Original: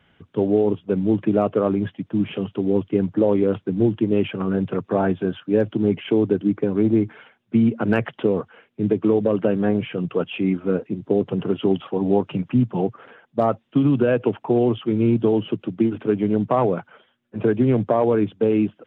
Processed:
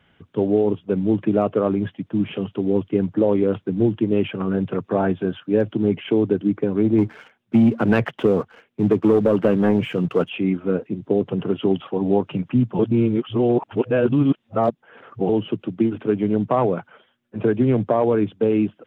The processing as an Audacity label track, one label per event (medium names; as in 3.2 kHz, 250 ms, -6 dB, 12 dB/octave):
6.980000	10.290000	waveshaping leveller passes 1
12.790000	15.290000	reverse